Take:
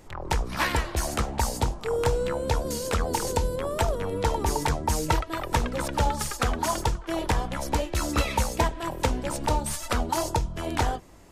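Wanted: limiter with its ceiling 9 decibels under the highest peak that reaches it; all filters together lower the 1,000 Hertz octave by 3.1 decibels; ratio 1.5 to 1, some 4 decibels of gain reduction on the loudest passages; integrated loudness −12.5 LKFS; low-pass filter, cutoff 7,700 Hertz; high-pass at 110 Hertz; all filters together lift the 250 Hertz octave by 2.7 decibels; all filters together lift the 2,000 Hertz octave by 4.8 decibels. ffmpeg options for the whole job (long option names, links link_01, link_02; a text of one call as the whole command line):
ffmpeg -i in.wav -af "highpass=110,lowpass=7700,equalizer=frequency=250:width_type=o:gain=4,equalizer=frequency=1000:width_type=o:gain=-5.5,equalizer=frequency=2000:width_type=o:gain=7.5,acompressor=threshold=-31dB:ratio=1.5,volume=20.5dB,alimiter=limit=-1dB:level=0:latency=1" out.wav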